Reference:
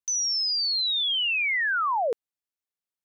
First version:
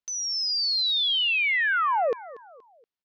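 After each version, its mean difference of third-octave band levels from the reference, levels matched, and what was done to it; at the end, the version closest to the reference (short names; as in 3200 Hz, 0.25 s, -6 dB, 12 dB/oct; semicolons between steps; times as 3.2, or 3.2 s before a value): 3.0 dB: LPF 5200 Hz 24 dB/oct; on a send: feedback echo 0.237 s, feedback 40%, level -18 dB; on the sum: gain +1.5 dB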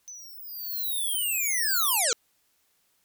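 8.0 dB: sine folder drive 20 dB, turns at -21.5 dBFS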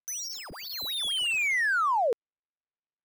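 13.5 dB: median filter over 9 samples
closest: first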